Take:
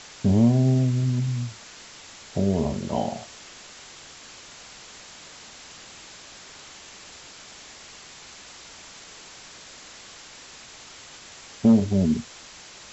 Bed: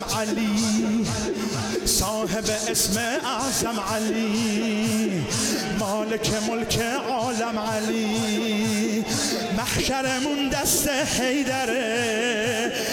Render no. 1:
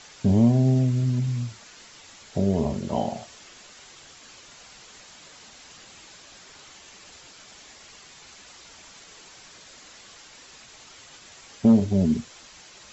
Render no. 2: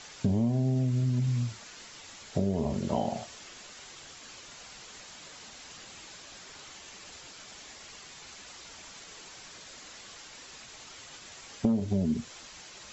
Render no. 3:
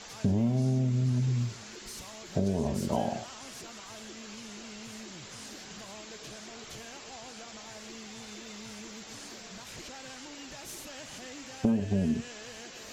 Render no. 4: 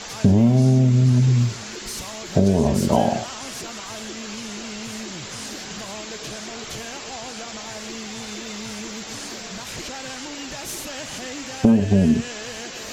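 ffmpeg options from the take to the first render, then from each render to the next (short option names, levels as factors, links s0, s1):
-af "afftdn=nr=6:nf=-46"
-af "acompressor=threshold=0.0631:ratio=5"
-filter_complex "[1:a]volume=0.0668[s0];[0:a][s0]amix=inputs=2:normalize=0"
-af "volume=3.76,alimiter=limit=0.794:level=0:latency=1"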